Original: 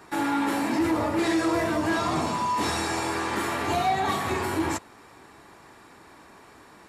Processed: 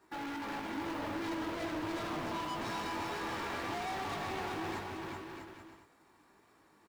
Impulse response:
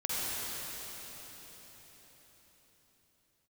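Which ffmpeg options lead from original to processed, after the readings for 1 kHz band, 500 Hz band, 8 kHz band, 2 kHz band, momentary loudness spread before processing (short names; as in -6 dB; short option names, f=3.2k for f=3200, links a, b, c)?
-12.0 dB, -12.0 dB, -15.5 dB, -10.5 dB, 3 LU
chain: -filter_complex "[0:a]acrossover=split=5500[a][b];[b]acompressor=threshold=-53dB:ratio=4:attack=1:release=60[c];[a][c]amix=inputs=2:normalize=0,afftdn=nr=15:nf=-36,asplit=2[d][e];[e]acompressor=threshold=-34dB:ratio=4,volume=-1dB[f];[d][f]amix=inputs=2:normalize=0,flanger=delay=18.5:depth=2.1:speed=1.5,asoftclip=type=hard:threshold=-32.5dB,acrusher=bits=4:mode=log:mix=0:aa=0.000001,asplit=2[g][h];[h]aecho=0:1:380|646|832.2|962.5|1054:0.631|0.398|0.251|0.158|0.1[i];[g][i]amix=inputs=2:normalize=0,volume=-5.5dB"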